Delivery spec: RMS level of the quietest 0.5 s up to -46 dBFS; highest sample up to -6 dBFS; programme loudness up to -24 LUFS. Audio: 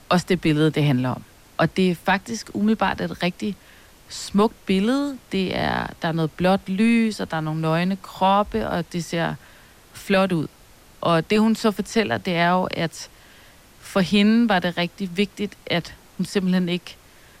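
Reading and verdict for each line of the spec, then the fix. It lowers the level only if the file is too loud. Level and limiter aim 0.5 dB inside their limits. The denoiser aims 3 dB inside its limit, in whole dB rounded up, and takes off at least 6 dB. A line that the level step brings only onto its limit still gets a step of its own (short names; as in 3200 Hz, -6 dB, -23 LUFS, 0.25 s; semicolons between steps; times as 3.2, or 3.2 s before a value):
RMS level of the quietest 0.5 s -50 dBFS: OK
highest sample -9.0 dBFS: OK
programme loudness -22.0 LUFS: fail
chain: gain -2.5 dB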